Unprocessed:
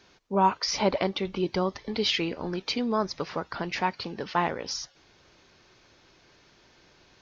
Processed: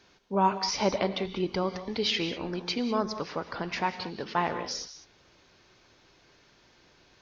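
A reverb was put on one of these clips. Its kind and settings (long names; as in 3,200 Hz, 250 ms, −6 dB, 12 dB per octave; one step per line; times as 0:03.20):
reverb whose tail is shaped and stops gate 220 ms rising, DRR 10 dB
level −2 dB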